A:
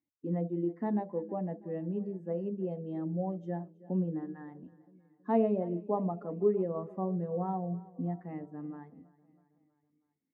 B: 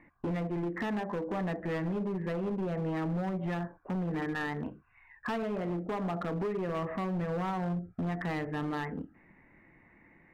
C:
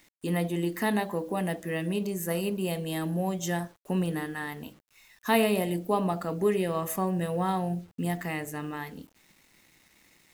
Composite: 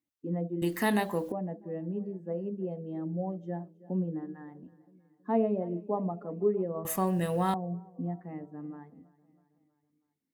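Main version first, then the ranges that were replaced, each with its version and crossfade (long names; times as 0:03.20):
A
0:00.62–0:01.32: punch in from C
0:06.85–0:07.54: punch in from C
not used: B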